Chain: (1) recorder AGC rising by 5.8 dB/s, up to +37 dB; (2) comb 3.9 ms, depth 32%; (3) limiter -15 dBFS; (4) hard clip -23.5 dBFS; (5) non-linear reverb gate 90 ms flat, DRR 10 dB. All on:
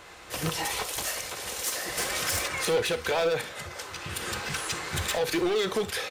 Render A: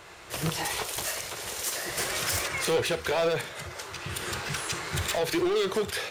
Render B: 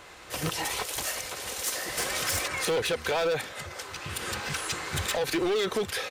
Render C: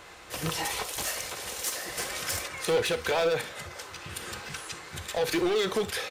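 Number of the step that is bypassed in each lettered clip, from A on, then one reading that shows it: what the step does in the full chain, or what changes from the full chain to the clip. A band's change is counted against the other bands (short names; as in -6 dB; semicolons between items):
2, 125 Hz band +2.0 dB; 5, crest factor change -5.0 dB; 1, momentary loudness spread change +4 LU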